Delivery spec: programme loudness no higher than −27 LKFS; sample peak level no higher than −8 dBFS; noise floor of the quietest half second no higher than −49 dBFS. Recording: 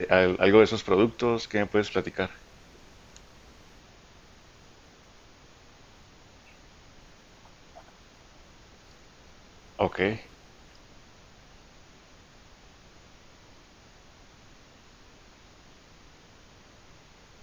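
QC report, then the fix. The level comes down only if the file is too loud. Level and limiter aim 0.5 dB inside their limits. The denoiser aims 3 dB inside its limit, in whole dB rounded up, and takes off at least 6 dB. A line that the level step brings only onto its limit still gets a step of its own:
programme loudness −25.0 LKFS: out of spec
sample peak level −4.5 dBFS: out of spec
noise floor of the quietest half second −54 dBFS: in spec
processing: level −2.5 dB
brickwall limiter −8.5 dBFS

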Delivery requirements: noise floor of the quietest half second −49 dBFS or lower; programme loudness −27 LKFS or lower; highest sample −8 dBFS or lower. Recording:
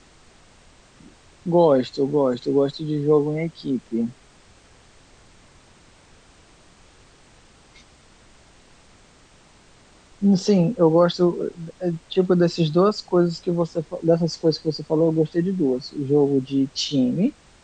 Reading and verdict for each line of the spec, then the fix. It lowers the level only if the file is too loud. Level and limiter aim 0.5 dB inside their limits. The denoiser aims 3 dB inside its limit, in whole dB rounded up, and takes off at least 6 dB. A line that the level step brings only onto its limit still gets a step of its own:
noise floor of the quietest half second −53 dBFS: in spec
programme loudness −21.5 LKFS: out of spec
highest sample −5.5 dBFS: out of spec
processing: level −6 dB

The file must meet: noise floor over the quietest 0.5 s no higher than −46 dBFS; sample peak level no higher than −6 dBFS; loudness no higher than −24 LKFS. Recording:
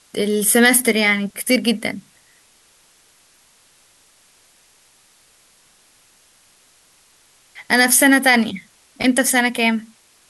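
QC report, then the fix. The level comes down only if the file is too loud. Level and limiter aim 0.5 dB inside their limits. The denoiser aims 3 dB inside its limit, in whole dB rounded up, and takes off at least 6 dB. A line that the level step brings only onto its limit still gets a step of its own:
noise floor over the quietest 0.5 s −55 dBFS: in spec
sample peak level −2.5 dBFS: out of spec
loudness −16.0 LKFS: out of spec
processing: level −8.5 dB

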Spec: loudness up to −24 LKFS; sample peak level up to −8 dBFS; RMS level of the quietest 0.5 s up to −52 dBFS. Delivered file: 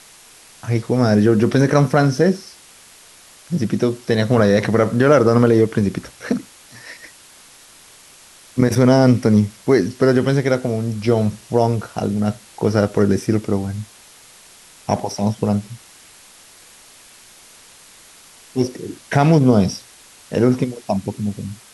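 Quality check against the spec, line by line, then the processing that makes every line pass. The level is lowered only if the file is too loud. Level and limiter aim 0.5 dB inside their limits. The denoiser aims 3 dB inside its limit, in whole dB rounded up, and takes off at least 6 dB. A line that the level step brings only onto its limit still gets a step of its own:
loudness −17.5 LKFS: out of spec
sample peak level −3.5 dBFS: out of spec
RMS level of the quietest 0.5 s −46 dBFS: out of spec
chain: level −7 dB

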